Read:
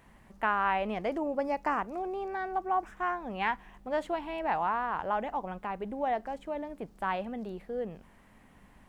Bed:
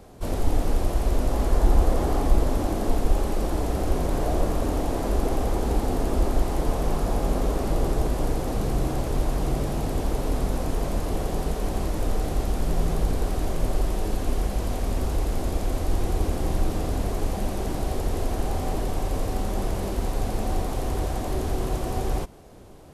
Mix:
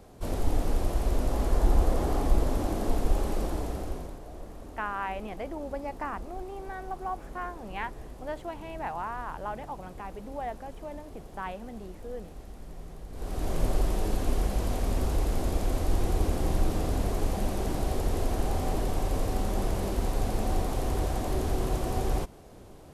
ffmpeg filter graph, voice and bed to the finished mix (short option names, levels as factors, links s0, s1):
-filter_complex "[0:a]adelay=4350,volume=0.562[s0];[1:a]volume=4.73,afade=t=out:st=3.37:d=0.82:silence=0.16788,afade=t=in:st=13.11:d=0.47:silence=0.133352[s1];[s0][s1]amix=inputs=2:normalize=0"